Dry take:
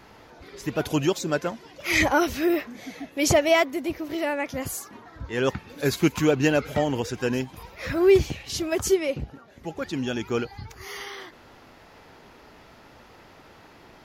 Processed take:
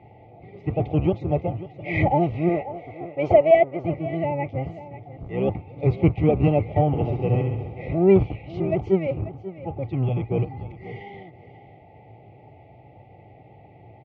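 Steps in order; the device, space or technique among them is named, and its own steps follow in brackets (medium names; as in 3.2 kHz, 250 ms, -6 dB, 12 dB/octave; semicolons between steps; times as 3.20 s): 6.88–7.82 s: flutter echo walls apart 11.7 m, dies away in 0.95 s; feedback delay 539 ms, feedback 16%, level -15 dB; FFT band-reject 890–1900 Hz; sub-octave bass pedal (octave divider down 1 oct, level +4 dB; cabinet simulation 86–2100 Hz, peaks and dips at 110 Hz +8 dB, 230 Hz -8 dB, 740 Hz +5 dB, 1.2 kHz +9 dB, 1.8 kHz -5 dB); 2.49–3.85 s: graphic EQ 125/250/500/4000 Hz -11/-6/+6/-3 dB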